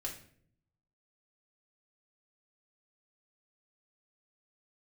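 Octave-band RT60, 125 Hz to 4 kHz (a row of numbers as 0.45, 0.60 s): 1.1, 0.90, 0.70, 0.50, 0.50, 0.45 s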